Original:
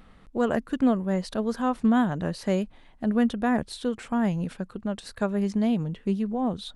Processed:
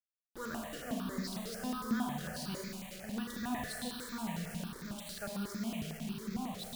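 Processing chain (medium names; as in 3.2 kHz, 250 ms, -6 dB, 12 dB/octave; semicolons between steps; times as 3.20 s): amplifier tone stack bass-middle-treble 5-5-5; Schroeder reverb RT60 2.2 s, combs from 28 ms, DRR -2 dB; bit crusher 8-bit; stepped phaser 11 Hz 250–2900 Hz; trim +2.5 dB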